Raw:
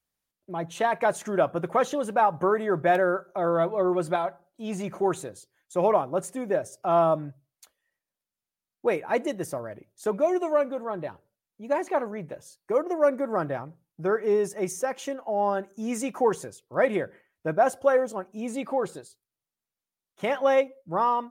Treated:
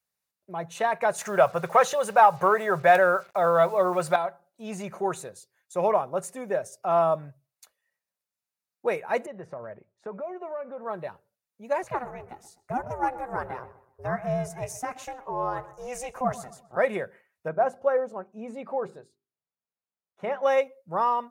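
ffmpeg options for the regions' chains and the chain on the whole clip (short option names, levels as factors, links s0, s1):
-filter_complex "[0:a]asettb=1/sr,asplit=3[s0][s1][s2];[s0]atrim=end=1.184[s3];[s1]atrim=start=1.18:end=4.16,asetpts=PTS-STARTPTS,afade=t=in:d=0.004:c=qsin,afade=t=out:st=2.976:d=0.004:c=qsin,equalizer=f=270:t=o:w=0.82:g=-14.5,acontrast=73,acrusher=bits=7:mix=0:aa=0.5[s4];[s2]atrim=start=4.156[s5];[s3][s4]acrossfade=d=0.004:c1=hsin:c2=qsin[s6];[s6][s5]acrossfade=d=0.004:c1=qsin:c2=hsin,asettb=1/sr,asplit=3[s7][s8][s9];[s7]atrim=end=9.264[s10];[s8]atrim=start=9.26:end=10.86,asetpts=PTS-STARTPTS,afade=t=in:d=0.004:c=qsin,afade=t=out:st=1.596:d=0.004:c=qsin,lowpass=1800,acompressor=threshold=0.0282:ratio=4:attack=3.2:release=140:knee=1:detection=peak[s11];[s9]atrim=start=10.856[s12];[s10][s11]acrossfade=d=0.004:c1=hsin:c2=qsin[s13];[s13][s12]acrossfade=d=0.004:c1=qsin:c2=hsin,asettb=1/sr,asplit=3[s14][s15][s16];[s14]atrim=end=11.834[s17];[s15]atrim=start=11.83:end=16.77,asetpts=PTS-STARTPTS,afade=t=in:d=0.004:c=qsin,afade=t=out:st=4.936:d=0.004:c=qsin,aeval=exprs='val(0)*sin(2*PI*250*n/s)':c=same,asplit=2[s18][s19];[s19]adelay=127,lowpass=f=2200:p=1,volume=0.168,asplit=2[s20][s21];[s21]adelay=127,lowpass=f=2200:p=1,volume=0.39,asplit=2[s22][s23];[s23]adelay=127,lowpass=f=2200:p=1,volume=0.39[s24];[s18][s20][s22][s24]amix=inputs=4:normalize=0,atrim=end_sample=217854[s25];[s16]atrim=start=16.766[s26];[s17][s25]acrossfade=d=0.004:c1=hsin:c2=qsin[s27];[s27][s26]acrossfade=d=0.004:c1=qsin:c2=hsin,asettb=1/sr,asplit=3[s28][s29][s30];[s28]atrim=end=17.484[s31];[s29]atrim=start=17.48:end=20.43,asetpts=PTS-STARTPTS,afade=t=in:d=0.004:c=qsin,afade=t=out:st=2.946:d=0.004:c=qsin,lowpass=f=1000:p=1,bandreject=f=50:t=h:w=6,bandreject=f=100:t=h:w=6,bandreject=f=150:t=h:w=6,bandreject=f=200:t=h:w=6,bandreject=f=250:t=h:w=6,bandreject=f=300:t=h:w=6,bandreject=f=350:t=h:w=6,bandreject=f=400:t=h:w=6[s32];[s30]atrim=start=20.426[s33];[s31][s32]acrossfade=d=0.004:c1=hsin:c2=qsin[s34];[s34][s33]acrossfade=d=0.004:c1=qsin:c2=hsin,highpass=f=160:p=1,equalizer=f=300:w=3.6:g=-13.5,bandreject=f=3200:w=10"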